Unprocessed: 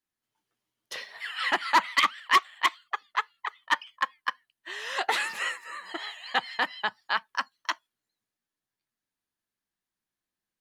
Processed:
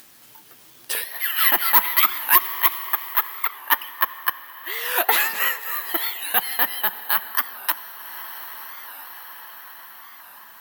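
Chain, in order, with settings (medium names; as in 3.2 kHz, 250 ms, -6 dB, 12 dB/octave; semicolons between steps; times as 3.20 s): careless resampling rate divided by 3×, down none, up zero stuff; bass shelf 63 Hz -12 dB; reverberation RT60 5.7 s, pre-delay 56 ms, DRR 16.5 dB; upward compressor, threshold -33 dBFS; 3.47–5.61 s: treble shelf 5.6 kHz -5.5 dB; loudness maximiser +8.5 dB; warped record 45 rpm, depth 160 cents; trim -1 dB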